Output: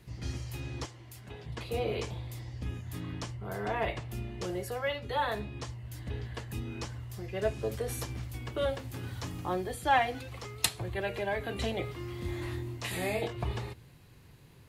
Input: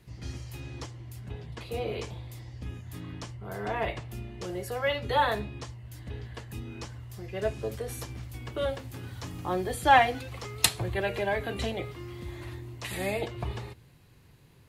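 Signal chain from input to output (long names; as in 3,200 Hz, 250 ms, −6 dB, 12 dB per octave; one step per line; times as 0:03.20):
0:00.85–0:01.46: low-shelf EQ 260 Hz −11.5 dB
0:12.22–0:13.33: double-tracking delay 23 ms −3.5 dB
speech leveller within 4 dB 0.5 s
level −2.5 dB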